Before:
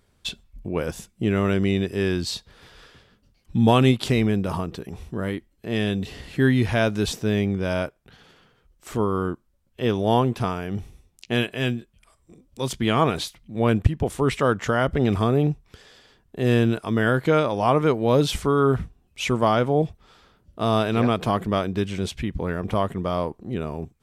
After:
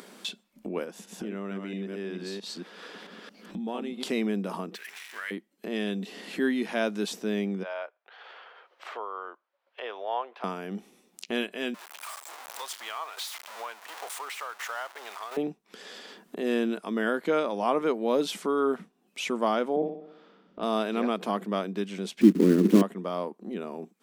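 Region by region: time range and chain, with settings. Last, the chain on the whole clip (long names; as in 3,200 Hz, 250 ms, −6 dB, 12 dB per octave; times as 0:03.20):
0:00.84–0:04.03: delay that plays each chunk backwards 223 ms, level −4.5 dB + high-shelf EQ 4,000 Hz −7 dB + downward compressor 2 to 1, threshold −32 dBFS
0:04.75–0:05.31: converter with a step at zero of −41.5 dBFS + high-pass with resonance 1,900 Hz, resonance Q 2.8
0:07.63–0:10.44: high-pass filter 610 Hz 24 dB per octave + high-frequency loss of the air 340 metres
0:11.74–0:15.37: converter with a step at zero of −24 dBFS + shaped tremolo saw down 1.4 Hz, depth 60% + four-pole ladder high-pass 710 Hz, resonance 30%
0:19.76–0:20.63: head-to-tape spacing loss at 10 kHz 31 dB + flutter between parallel walls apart 10.5 metres, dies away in 0.69 s + multiband upward and downward expander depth 40%
0:22.21–0:22.82: one scale factor per block 3 bits + low shelf with overshoot 480 Hz +13.5 dB, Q 3
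whole clip: elliptic high-pass filter 190 Hz, stop band 40 dB; upward compression, threshold −25 dBFS; level −5.5 dB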